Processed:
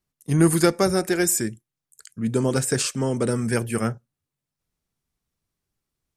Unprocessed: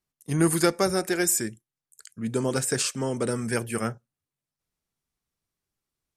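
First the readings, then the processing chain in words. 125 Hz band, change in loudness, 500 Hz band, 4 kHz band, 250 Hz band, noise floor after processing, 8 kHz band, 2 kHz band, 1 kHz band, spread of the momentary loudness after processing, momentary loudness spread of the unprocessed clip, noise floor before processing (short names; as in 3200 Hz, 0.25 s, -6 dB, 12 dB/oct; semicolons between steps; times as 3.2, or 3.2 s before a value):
+6.0 dB, +3.5 dB, +3.5 dB, +1.5 dB, +4.5 dB, under -85 dBFS, +1.5 dB, +1.5 dB, +2.0 dB, 9 LU, 8 LU, under -85 dBFS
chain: low shelf 320 Hz +5.5 dB; gain +1.5 dB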